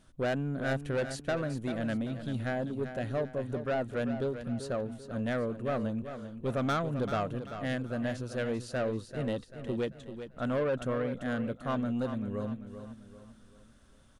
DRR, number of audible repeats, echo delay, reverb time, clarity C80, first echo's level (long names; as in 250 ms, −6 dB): no reverb audible, 4, 390 ms, no reverb audible, no reverb audible, −10.0 dB